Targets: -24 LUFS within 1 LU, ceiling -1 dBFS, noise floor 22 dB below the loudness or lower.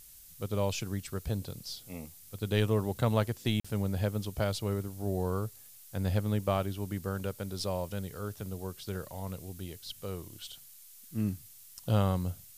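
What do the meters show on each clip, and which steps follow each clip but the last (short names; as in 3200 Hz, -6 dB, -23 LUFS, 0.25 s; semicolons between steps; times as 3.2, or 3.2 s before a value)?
dropouts 1; longest dropout 45 ms; noise floor -53 dBFS; noise floor target -56 dBFS; loudness -34.0 LUFS; peak -13.0 dBFS; loudness target -24.0 LUFS
-> interpolate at 3.6, 45 ms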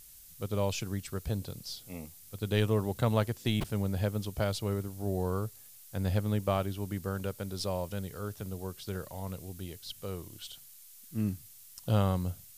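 dropouts 0; noise floor -53 dBFS; noise floor target -56 dBFS
-> denoiser 6 dB, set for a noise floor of -53 dBFS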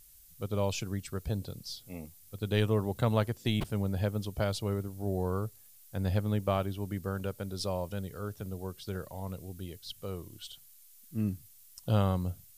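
noise floor -57 dBFS; loudness -34.0 LUFS; peak -13.0 dBFS; loudness target -24.0 LUFS
-> gain +10 dB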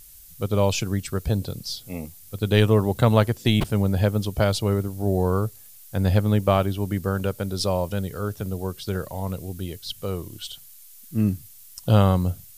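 loudness -24.0 LUFS; peak -3.0 dBFS; noise floor -47 dBFS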